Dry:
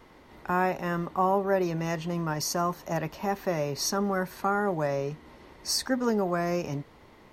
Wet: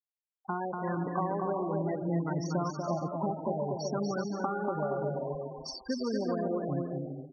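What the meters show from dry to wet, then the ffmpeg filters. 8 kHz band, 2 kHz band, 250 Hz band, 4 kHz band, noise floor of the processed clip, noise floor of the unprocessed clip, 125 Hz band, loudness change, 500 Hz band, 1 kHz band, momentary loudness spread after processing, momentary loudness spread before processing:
−15.0 dB, −10.5 dB, −2.5 dB, −11.0 dB, below −85 dBFS, −54 dBFS, −1.5 dB, −4.5 dB, −3.5 dB, −5.5 dB, 5 LU, 8 LU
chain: -filter_complex "[0:a]dynaudnorm=framelen=270:gausssize=7:maxgain=11.5dB,asplit=2[link_01][link_02];[link_02]asplit=7[link_03][link_04][link_05][link_06][link_07][link_08][link_09];[link_03]adelay=90,afreqshift=120,volume=-11.5dB[link_10];[link_04]adelay=180,afreqshift=240,volume=-16.1dB[link_11];[link_05]adelay=270,afreqshift=360,volume=-20.7dB[link_12];[link_06]adelay=360,afreqshift=480,volume=-25.2dB[link_13];[link_07]adelay=450,afreqshift=600,volume=-29.8dB[link_14];[link_08]adelay=540,afreqshift=720,volume=-34.4dB[link_15];[link_09]adelay=630,afreqshift=840,volume=-39dB[link_16];[link_10][link_11][link_12][link_13][link_14][link_15][link_16]amix=inputs=7:normalize=0[link_17];[link_01][link_17]amix=inputs=2:normalize=0,acompressor=threshold=-28dB:ratio=16,afftfilt=real='re*gte(hypot(re,im),0.0794)':imag='im*gte(hypot(re,im),0.0794)':win_size=1024:overlap=0.75,aemphasis=mode=reproduction:type=75kf,asplit=2[link_18][link_19];[link_19]aecho=0:1:240|384|470.4|522.2|553.3:0.631|0.398|0.251|0.158|0.1[link_20];[link_18][link_20]amix=inputs=2:normalize=0"

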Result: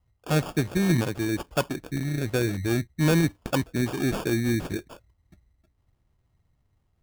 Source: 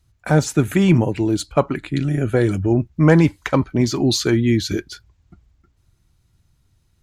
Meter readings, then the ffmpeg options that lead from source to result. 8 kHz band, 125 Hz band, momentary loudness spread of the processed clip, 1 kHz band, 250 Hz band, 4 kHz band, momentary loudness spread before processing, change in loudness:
−7.0 dB, −8.0 dB, 6 LU, −8.0 dB, −8.0 dB, −8.0 dB, 6 LU, −8.0 dB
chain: -af "acrusher=samples=22:mix=1:aa=0.000001,volume=6dB,asoftclip=hard,volume=-6dB,volume=-8dB"

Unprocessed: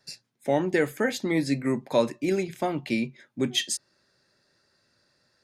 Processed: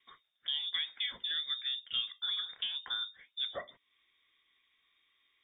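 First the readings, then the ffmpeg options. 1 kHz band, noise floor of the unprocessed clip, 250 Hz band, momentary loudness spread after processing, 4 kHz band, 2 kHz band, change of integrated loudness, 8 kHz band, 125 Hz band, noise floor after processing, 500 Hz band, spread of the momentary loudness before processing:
−18.0 dB, −70 dBFS, below −40 dB, 6 LU, +2.5 dB, −11.0 dB, −7.5 dB, below −40 dB, below −35 dB, −78 dBFS, −26.5 dB, 7 LU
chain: -af "acompressor=threshold=-37dB:ratio=2,lowpass=frequency=3200:width_type=q:width=0.5098,lowpass=frequency=3200:width_type=q:width=0.6013,lowpass=frequency=3200:width_type=q:width=0.9,lowpass=frequency=3200:width_type=q:width=2.563,afreqshift=-3800,volume=-2.5dB"

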